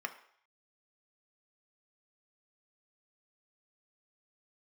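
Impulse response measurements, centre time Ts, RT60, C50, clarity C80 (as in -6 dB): 8 ms, 0.60 s, 13.0 dB, 16.0 dB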